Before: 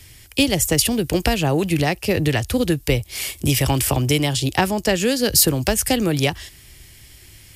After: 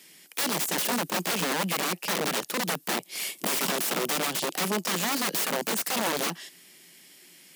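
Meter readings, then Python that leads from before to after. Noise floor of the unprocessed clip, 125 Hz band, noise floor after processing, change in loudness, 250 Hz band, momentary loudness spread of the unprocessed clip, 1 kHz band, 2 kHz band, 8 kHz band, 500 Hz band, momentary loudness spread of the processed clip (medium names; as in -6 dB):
-46 dBFS, -19.5 dB, -54 dBFS, -8.0 dB, -12.5 dB, 6 LU, -4.0 dB, -5.0 dB, -7.0 dB, -10.5 dB, 4 LU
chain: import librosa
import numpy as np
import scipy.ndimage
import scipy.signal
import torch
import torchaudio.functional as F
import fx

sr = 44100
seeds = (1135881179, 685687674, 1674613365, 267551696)

y = (np.mod(10.0 ** (16.5 / 20.0) * x + 1.0, 2.0) - 1.0) / 10.0 ** (16.5 / 20.0)
y = scipy.signal.sosfilt(scipy.signal.ellip(4, 1.0, 40, 170.0, 'highpass', fs=sr, output='sos'), y)
y = y * 10.0 ** (-4.5 / 20.0)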